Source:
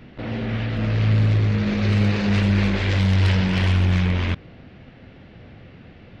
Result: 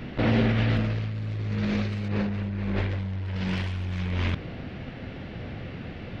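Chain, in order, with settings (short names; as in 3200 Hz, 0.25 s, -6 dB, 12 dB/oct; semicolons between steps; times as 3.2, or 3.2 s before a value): negative-ratio compressor -27 dBFS, ratio -1; 2.08–3.36 LPF 1400 Hz 6 dB/oct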